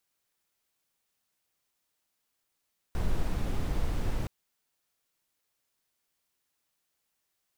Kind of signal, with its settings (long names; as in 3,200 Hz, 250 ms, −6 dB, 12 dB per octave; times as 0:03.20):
noise brown, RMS −27.5 dBFS 1.32 s